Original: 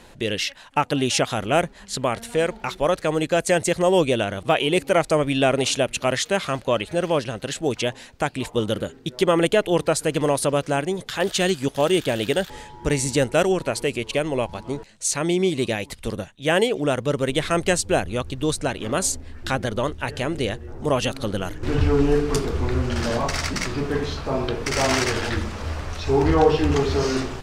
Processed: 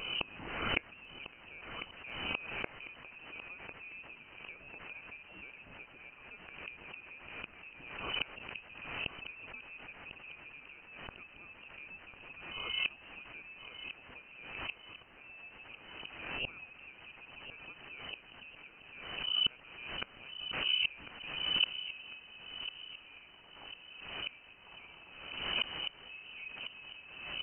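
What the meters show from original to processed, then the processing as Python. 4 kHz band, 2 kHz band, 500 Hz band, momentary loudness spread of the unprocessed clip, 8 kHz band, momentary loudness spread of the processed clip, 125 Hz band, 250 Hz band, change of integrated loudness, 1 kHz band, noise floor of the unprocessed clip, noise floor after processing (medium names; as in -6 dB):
-7.5 dB, -12.5 dB, -33.0 dB, 8 LU, under -40 dB, 17 LU, -30.5 dB, -30.5 dB, -17.0 dB, -23.0 dB, -47 dBFS, -57 dBFS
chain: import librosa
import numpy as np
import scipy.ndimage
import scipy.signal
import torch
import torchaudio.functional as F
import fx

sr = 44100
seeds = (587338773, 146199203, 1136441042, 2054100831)

y = fx.low_shelf(x, sr, hz=280.0, db=-2.5)
y = fx.transient(y, sr, attack_db=3, sustain_db=-5)
y = fx.fixed_phaser(y, sr, hz=450.0, stages=4)
y = fx.gate_flip(y, sr, shuts_db=-24.0, range_db=-35)
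y = fx.quant_dither(y, sr, seeds[0], bits=10, dither='triangular')
y = fx.freq_invert(y, sr, carrier_hz=3000)
y = fx.echo_feedback(y, sr, ms=1049, feedback_pct=44, wet_db=-11.5)
y = fx.pre_swell(y, sr, db_per_s=47.0)
y = y * librosa.db_to_amplitude(4.0)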